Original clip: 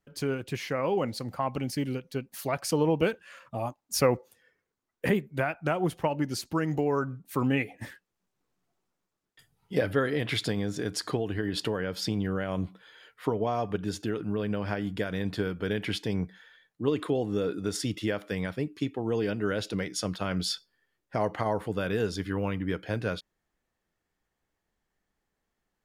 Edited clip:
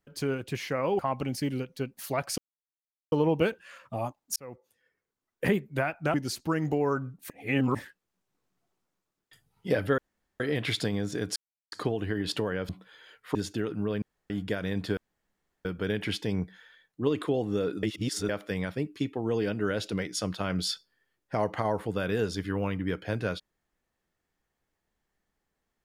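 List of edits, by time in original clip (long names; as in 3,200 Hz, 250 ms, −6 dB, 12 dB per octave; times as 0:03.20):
0:00.99–0:01.34: remove
0:02.73: splice in silence 0.74 s
0:03.97–0:05.07: fade in linear
0:05.75–0:06.20: remove
0:07.36–0:07.81: reverse
0:10.04: splice in room tone 0.42 s
0:11.00: splice in silence 0.36 s
0:11.97–0:12.63: remove
0:13.29–0:13.84: remove
0:14.51–0:14.79: fill with room tone
0:15.46: splice in room tone 0.68 s
0:17.64–0:18.10: reverse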